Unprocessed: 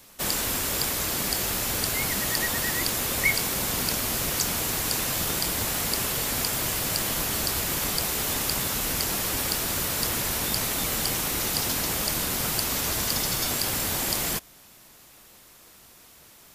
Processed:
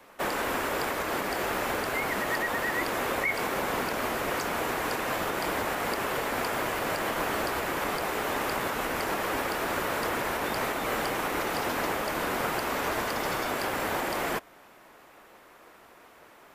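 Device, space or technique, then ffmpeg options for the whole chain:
DJ mixer with the lows and highs turned down: -filter_complex "[0:a]acrossover=split=290 2200:gain=0.178 1 0.1[s0][s1][s2];[s0][s1][s2]amix=inputs=3:normalize=0,alimiter=level_in=1.19:limit=0.0631:level=0:latency=1:release=117,volume=0.841,volume=2.11"

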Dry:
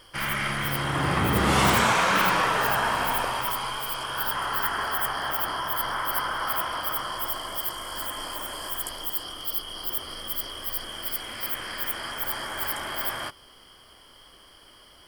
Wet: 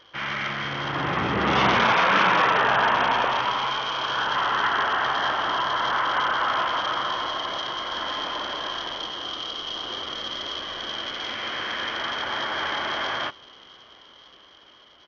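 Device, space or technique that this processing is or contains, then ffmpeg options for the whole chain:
Bluetooth headset: -af "highpass=f=210:p=1,dynaudnorm=f=620:g=7:m=2.11,aresample=8000,aresample=44100" -ar 48000 -c:a sbc -b:a 64k

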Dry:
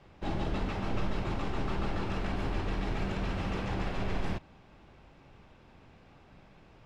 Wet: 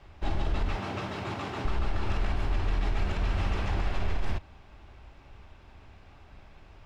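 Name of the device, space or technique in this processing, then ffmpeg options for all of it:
car stereo with a boomy subwoofer: -filter_complex "[0:a]bandreject=f=500:w=12,asettb=1/sr,asplit=3[s0][s1][s2];[s0]atrim=end=0.774[s3];[s1]atrim=start=0.77:end=1.65,asetpts=PTS-STARTPTS,afade=t=in:d=0.004:c=qsin,afade=t=out:st=0.876:d=0.004:c=qsin,highpass=f=110:w=0.5412,highpass=f=110:w=1.3066[s4];[s2]atrim=start=1.646[s5];[s3][s4]acrossfade=d=0.004:c1=hsin:c2=qsin[s6];[s6][s5]acrossfade=d=0.004:c1=qsin:c2=hsin,lowshelf=f=110:t=q:w=1.5:g=6.5,equalizer=f=170:t=o:w=2.7:g=-4.5,alimiter=limit=0.075:level=0:latency=1:release=63,volume=1.5"

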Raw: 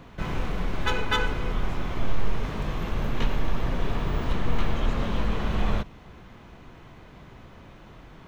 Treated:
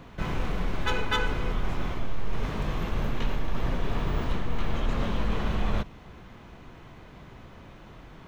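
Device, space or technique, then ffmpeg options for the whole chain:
compression on the reversed sound: -af "areverse,acompressor=threshold=0.1:ratio=6,areverse"

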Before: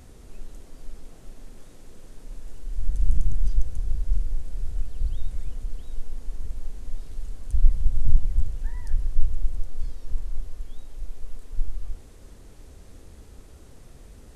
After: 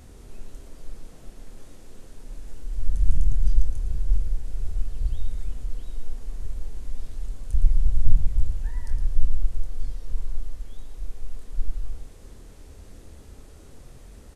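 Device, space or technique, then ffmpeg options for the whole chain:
slapback doubling: -filter_complex "[0:a]asplit=3[s0][s1][s2];[s1]adelay=25,volume=0.398[s3];[s2]adelay=113,volume=0.398[s4];[s0][s3][s4]amix=inputs=3:normalize=0"

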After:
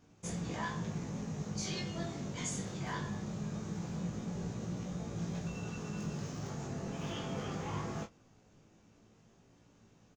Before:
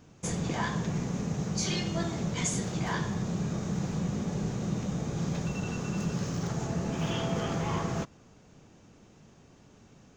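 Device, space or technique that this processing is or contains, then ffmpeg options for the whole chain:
double-tracked vocal: -filter_complex "[0:a]asplit=2[s0][s1];[s1]adelay=28,volume=0.335[s2];[s0][s2]amix=inputs=2:normalize=0,flanger=delay=17.5:depth=3:speed=0.21,volume=0.562"

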